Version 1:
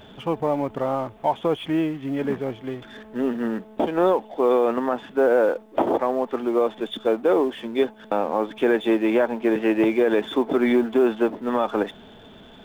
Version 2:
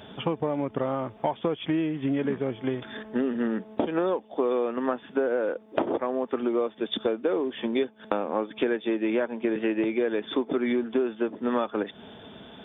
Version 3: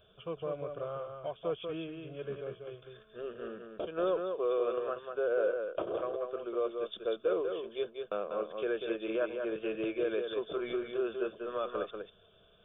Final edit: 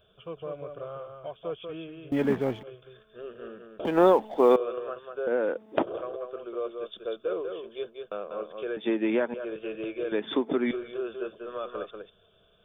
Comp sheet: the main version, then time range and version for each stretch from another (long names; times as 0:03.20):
3
0:02.12–0:02.63: punch in from 1
0:03.85–0:04.56: punch in from 1
0:05.27–0:05.83: punch in from 2
0:08.77–0:09.34: punch in from 2
0:10.12–0:10.71: punch in from 2